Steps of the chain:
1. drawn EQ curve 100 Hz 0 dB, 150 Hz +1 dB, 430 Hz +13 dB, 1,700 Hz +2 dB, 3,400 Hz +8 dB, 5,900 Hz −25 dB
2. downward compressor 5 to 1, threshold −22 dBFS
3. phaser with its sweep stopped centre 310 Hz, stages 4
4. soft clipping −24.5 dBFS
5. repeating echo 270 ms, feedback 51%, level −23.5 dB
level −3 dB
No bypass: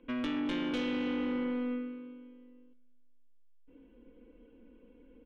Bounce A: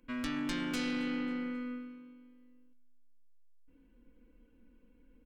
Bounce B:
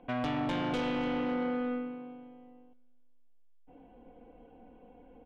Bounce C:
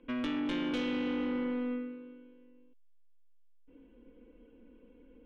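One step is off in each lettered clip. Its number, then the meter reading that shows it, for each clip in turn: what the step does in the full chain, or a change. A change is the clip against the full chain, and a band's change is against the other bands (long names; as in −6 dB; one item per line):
1, 500 Hz band −7.0 dB
3, 125 Hz band +9.0 dB
5, echo-to-direct ratio −22.5 dB to none audible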